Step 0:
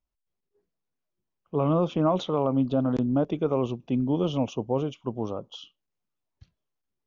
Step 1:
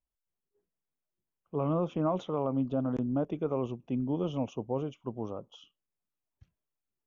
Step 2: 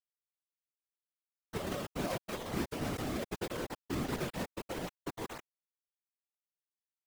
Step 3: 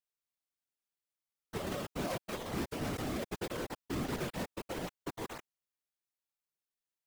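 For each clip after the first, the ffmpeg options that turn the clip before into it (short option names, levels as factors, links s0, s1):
-af "equalizer=f=4300:t=o:w=0.65:g=-12.5,volume=0.501"
-af "acrusher=bits=4:mix=0:aa=0.000001,alimiter=level_in=1.06:limit=0.0631:level=0:latency=1:release=19,volume=0.944,afftfilt=real='hypot(re,im)*cos(2*PI*random(0))':imag='hypot(re,im)*sin(2*PI*random(1))':win_size=512:overlap=0.75,volume=1.12"
-af "volume=31.6,asoftclip=hard,volume=0.0316"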